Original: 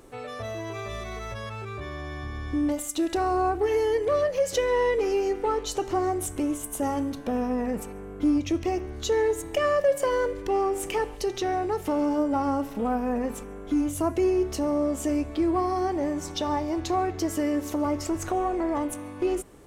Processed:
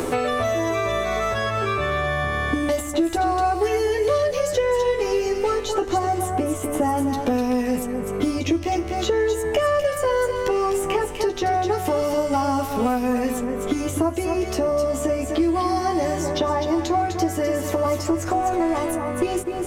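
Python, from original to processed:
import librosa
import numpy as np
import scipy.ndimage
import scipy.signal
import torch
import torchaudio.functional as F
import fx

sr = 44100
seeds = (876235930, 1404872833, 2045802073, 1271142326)

y = fx.doubler(x, sr, ms=12.0, db=-3)
y = y + 10.0 ** (-9.5 / 20.0) * np.pad(y, (int(250 * sr / 1000.0), 0))[:len(y)]
y = fx.band_squash(y, sr, depth_pct=100)
y = y * 10.0 ** (1.5 / 20.0)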